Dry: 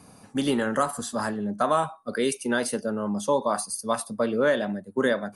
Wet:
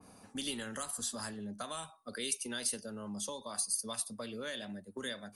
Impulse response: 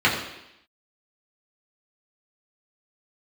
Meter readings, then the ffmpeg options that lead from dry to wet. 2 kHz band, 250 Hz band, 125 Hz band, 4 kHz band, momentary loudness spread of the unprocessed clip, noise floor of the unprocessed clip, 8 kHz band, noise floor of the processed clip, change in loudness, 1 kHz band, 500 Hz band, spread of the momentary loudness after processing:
-14.0 dB, -15.5 dB, -14.0 dB, -3.5 dB, 6 LU, -53 dBFS, -1.5 dB, -60 dBFS, -11.5 dB, -19.0 dB, -19.5 dB, 9 LU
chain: -filter_complex "[0:a]equalizer=f=140:t=o:w=0.28:g=-13.5,acrossover=split=140|2600[a][b][c];[b]acompressor=threshold=-38dB:ratio=5[d];[a][d][c]amix=inputs=3:normalize=0,adynamicequalizer=threshold=0.00282:dfrequency=1900:dqfactor=0.7:tfrequency=1900:tqfactor=0.7:attack=5:release=100:ratio=0.375:range=2:mode=boostabove:tftype=highshelf,volume=-5.5dB"

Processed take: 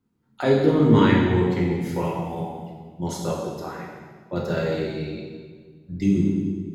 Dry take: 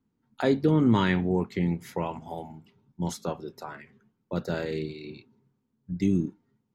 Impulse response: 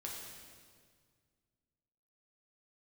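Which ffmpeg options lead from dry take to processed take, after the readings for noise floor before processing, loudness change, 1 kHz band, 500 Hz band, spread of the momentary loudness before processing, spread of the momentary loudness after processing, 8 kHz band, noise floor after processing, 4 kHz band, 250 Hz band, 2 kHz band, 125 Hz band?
-77 dBFS, +5.0 dB, +5.5 dB, +7.0 dB, 20 LU, 20 LU, +4.5 dB, -62 dBFS, +4.5 dB, +5.5 dB, +5.0 dB, +6.0 dB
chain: -filter_complex "[1:a]atrim=start_sample=2205,asetrate=52920,aresample=44100[a];[0:a][a]afir=irnorm=-1:irlink=0,volume=8dB"

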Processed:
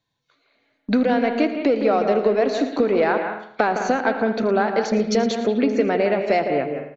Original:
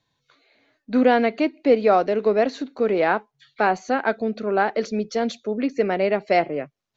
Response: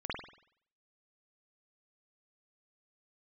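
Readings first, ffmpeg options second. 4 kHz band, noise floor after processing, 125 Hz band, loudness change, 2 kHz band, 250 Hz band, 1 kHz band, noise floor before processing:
+3.0 dB, -71 dBFS, +3.5 dB, +1.5 dB, +0.5 dB, +3.0 dB, 0.0 dB, -77 dBFS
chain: -filter_complex "[0:a]acontrast=22,agate=range=-17dB:threshold=-43dB:ratio=16:detection=peak,acompressor=threshold=-25dB:ratio=6,aecho=1:1:80:0.141,asplit=2[a][b];[1:a]atrim=start_sample=2205,adelay=112[c];[b][c]afir=irnorm=-1:irlink=0,volume=-9dB[d];[a][d]amix=inputs=2:normalize=0,volume=7.5dB"

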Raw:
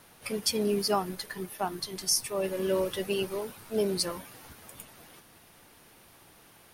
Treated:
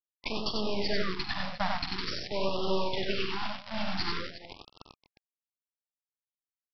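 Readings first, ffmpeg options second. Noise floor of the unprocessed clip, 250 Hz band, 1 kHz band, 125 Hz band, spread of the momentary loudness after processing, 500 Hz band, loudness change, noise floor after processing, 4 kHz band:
-57 dBFS, -2.5 dB, +0.5 dB, 0.0 dB, 9 LU, -4.5 dB, -2.5 dB, under -85 dBFS, 0.0 dB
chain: -af "acompressor=threshold=-35dB:ratio=3,equalizer=f=250:t=o:w=1:g=-4,equalizer=f=500:t=o:w=1:g=-3,equalizer=f=1k:t=o:w=1:g=5,aresample=11025,acrusher=bits=4:dc=4:mix=0:aa=0.000001,aresample=44100,aecho=1:1:47|75|94|123|245|357:0.316|0.251|0.668|0.188|0.126|0.188,afftfilt=real='re*(1-between(b*sr/1024,360*pow(1900/360,0.5+0.5*sin(2*PI*0.47*pts/sr))/1.41,360*pow(1900/360,0.5+0.5*sin(2*PI*0.47*pts/sr))*1.41))':imag='im*(1-between(b*sr/1024,360*pow(1900/360,0.5+0.5*sin(2*PI*0.47*pts/sr))/1.41,360*pow(1900/360,0.5+0.5*sin(2*PI*0.47*pts/sr))*1.41))':win_size=1024:overlap=0.75,volume=8.5dB"

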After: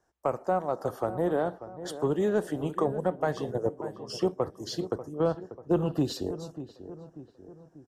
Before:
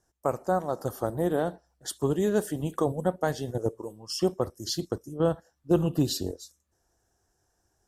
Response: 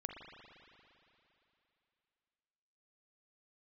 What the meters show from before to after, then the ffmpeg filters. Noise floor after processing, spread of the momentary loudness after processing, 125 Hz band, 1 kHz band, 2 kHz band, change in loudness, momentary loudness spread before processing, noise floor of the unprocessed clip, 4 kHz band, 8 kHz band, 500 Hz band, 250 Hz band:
-61 dBFS, 15 LU, -3.5 dB, +0.5 dB, -1.0 dB, -1.5 dB, 10 LU, -75 dBFS, -5.0 dB, -8.5 dB, 0.0 dB, -1.5 dB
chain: -filter_complex "[0:a]acrossover=split=260[a][b];[b]acompressor=threshold=-30dB:ratio=1.5[c];[a][c]amix=inputs=2:normalize=0,asplit=2[d][e];[e]highpass=f=720:p=1,volume=12dB,asoftclip=type=tanh:threshold=-11dB[f];[d][f]amix=inputs=2:normalize=0,lowpass=f=1.2k:p=1,volume=-6dB,asplit=2[g][h];[h]adelay=590,lowpass=f=1.5k:p=1,volume=-12.5dB,asplit=2[i][j];[j]adelay=590,lowpass=f=1.5k:p=1,volume=0.52,asplit=2[k][l];[l]adelay=590,lowpass=f=1.5k:p=1,volume=0.52,asplit=2[m][n];[n]adelay=590,lowpass=f=1.5k:p=1,volume=0.52,asplit=2[o][p];[p]adelay=590,lowpass=f=1.5k:p=1,volume=0.52[q];[g][i][k][m][o][q]amix=inputs=6:normalize=0"

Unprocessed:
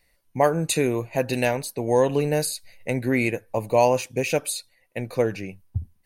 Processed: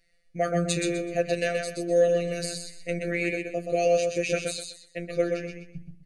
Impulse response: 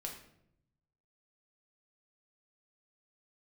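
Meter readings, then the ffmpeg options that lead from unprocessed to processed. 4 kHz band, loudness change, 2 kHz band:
-2.0 dB, -3.0 dB, -2.5 dB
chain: -filter_complex "[0:a]lowpass=f=8.4k:w=0.5412,lowpass=f=8.4k:w=1.3066,bandreject=f=50:t=h:w=6,bandreject=f=100:t=h:w=6,bandreject=f=150:t=h:w=6,afftfilt=real='hypot(re,im)*cos(PI*b)':imag='0':win_size=1024:overlap=0.75,asuperstop=centerf=940:order=8:qfactor=1.8,asplit=2[a][b];[b]aecho=0:1:126|252|378|504:0.596|0.161|0.0434|0.0117[c];[a][c]amix=inputs=2:normalize=0"

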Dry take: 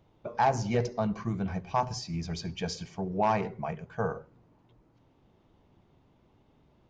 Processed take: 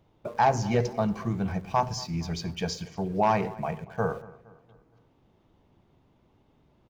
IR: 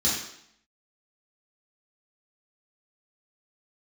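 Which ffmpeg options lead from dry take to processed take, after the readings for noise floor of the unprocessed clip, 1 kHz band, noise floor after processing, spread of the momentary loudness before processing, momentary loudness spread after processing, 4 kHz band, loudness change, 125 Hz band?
-66 dBFS, +3.0 dB, -65 dBFS, 9 LU, 9 LU, +3.0 dB, +3.0 dB, +3.0 dB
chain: -filter_complex "[0:a]asplit=2[a][b];[b]aeval=exprs='val(0)*gte(abs(val(0)),0.00631)':c=same,volume=-8dB[c];[a][c]amix=inputs=2:normalize=0,asplit=2[d][e];[e]adelay=233,lowpass=f=4.3k:p=1,volume=-20dB,asplit=2[f][g];[g]adelay=233,lowpass=f=4.3k:p=1,volume=0.48,asplit=2[h][i];[i]adelay=233,lowpass=f=4.3k:p=1,volume=0.48,asplit=2[j][k];[k]adelay=233,lowpass=f=4.3k:p=1,volume=0.48[l];[d][f][h][j][l]amix=inputs=5:normalize=0"

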